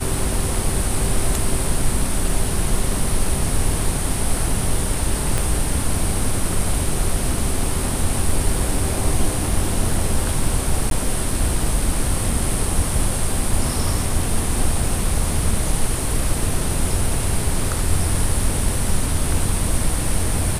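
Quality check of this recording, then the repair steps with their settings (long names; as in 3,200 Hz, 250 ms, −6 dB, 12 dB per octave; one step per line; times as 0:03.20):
0:05.38: click −6 dBFS
0:10.90–0:10.91: drop-out 12 ms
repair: click removal
repair the gap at 0:10.90, 12 ms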